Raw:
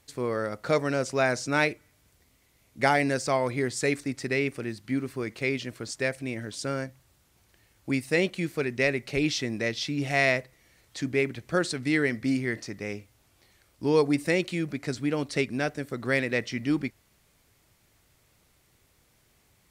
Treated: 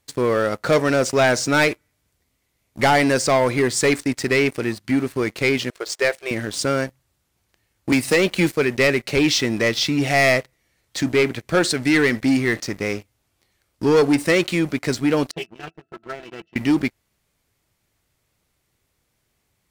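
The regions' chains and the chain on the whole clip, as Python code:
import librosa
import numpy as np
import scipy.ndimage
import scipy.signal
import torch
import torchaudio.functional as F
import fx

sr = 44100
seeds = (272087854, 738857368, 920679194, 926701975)

y = fx.chain(x, sr, fx.median_filter(points=3),
    fx.brickwall_highpass(low_hz=340.0),
    fx.high_shelf(hz=10000.0, db=-6.0), at=(5.7, 6.31))
y = fx.chain(y, sr, fx.block_float(bits=7),
    fx.band_squash(depth_pct=100), at=(7.92, 8.51))
y = fx.chain(y, sr, fx.highpass(hz=300.0, slope=6),
    fx.octave_resonator(note='E', decay_s=0.11),
    fx.doppler_dist(depth_ms=0.42), at=(15.31, 16.56))
y = fx.dynamic_eq(y, sr, hz=140.0, q=0.85, threshold_db=-39.0, ratio=4.0, max_db=-4)
y = fx.leveller(y, sr, passes=3)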